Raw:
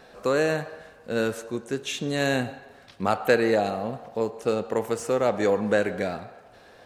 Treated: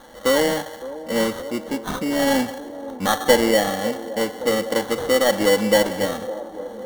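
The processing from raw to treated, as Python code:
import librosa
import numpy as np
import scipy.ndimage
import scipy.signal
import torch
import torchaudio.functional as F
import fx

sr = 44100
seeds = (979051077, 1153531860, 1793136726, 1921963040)

p1 = fx.cvsd(x, sr, bps=64000)
p2 = p1 + 0.78 * np.pad(p1, (int(3.7 * sr / 1000.0), 0))[:len(p1)]
p3 = fx.sample_hold(p2, sr, seeds[0], rate_hz=2500.0, jitter_pct=0)
p4 = p3 + fx.echo_wet_bandpass(p3, sr, ms=561, feedback_pct=76, hz=490.0, wet_db=-14.0, dry=0)
y = p4 * 10.0 ** (2.5 / 20.0)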